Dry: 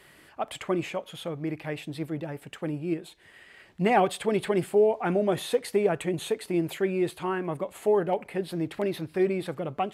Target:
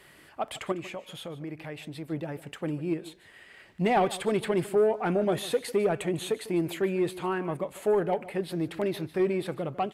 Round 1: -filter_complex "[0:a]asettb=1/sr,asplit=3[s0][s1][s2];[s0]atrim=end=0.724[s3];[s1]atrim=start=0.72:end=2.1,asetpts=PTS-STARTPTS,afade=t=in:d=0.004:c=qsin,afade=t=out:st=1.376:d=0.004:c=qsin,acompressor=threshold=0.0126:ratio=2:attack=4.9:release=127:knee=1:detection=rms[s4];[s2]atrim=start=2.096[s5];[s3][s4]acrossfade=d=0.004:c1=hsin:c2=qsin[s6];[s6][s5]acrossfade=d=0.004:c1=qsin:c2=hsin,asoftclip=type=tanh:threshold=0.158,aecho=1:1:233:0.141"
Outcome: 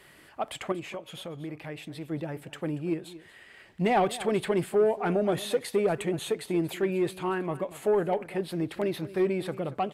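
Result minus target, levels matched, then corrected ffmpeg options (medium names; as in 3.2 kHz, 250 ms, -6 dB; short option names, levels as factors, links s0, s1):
echo 83 ms late
-filter_complex "[0:a]asettb=1/sr,asplit=3[s0][s1][s2];[s0]atrim=end=0.724[s3];[s1]atrim=start=0.72:end=2.1,asetpts=PTS-STARTPTS,afade=t=in:d=0.004:c=qsin,afade=t=out:st=1.376:d=0.004:c=qsin,acompressor=threshold=0.0126:ratio=2:attack=4.9:release=127:knee=1:detection=rms[s4];[s2]atrim=start=2.096[s5];[s3][s4]acrossfade=d=0.004:c1=hsin:c2=qsin[s6];[s6][s5]acrossfade=d=0.004:c1=qsin:c2=hsin,asoftclip=type=tanh:threshold=0.158,aecho=1:1:150:0.141"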